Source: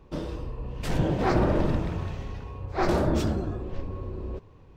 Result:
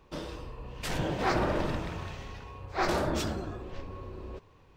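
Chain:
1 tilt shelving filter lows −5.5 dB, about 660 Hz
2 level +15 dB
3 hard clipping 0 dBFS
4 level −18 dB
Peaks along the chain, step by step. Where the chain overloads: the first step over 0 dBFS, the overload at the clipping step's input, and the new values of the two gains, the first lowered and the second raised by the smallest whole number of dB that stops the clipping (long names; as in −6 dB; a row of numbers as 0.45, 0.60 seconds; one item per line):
−11.0, +4.0, 0.0, −18.0 dBFS
step 2, 4.0 dB
step 2 +11 dB, step 4 −14 dB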